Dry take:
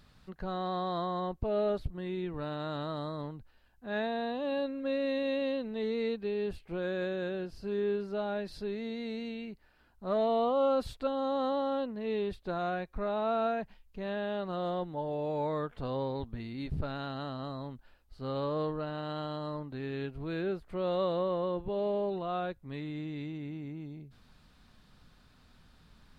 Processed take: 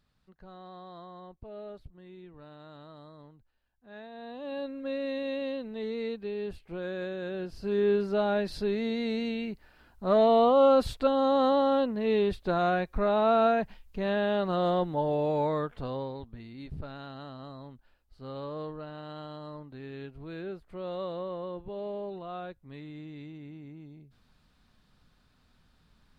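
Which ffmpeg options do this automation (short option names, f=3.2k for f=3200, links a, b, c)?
-af "volume=7dB,afade=t=in:st=4.1:d=0.64:silence=0.266073,afade=t=in:st=7.22:d=0.77:silence=0.375837,afade=t=out:st=15.07:d=1.14:silence=0.251189"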